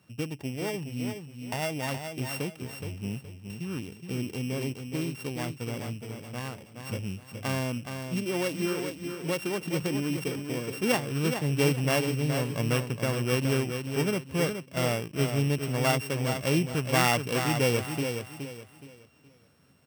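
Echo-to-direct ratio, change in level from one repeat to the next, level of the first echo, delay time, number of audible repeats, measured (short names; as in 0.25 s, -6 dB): -6.5 dB, -10.5 dB, -7.0 dB, 0.42 s, 3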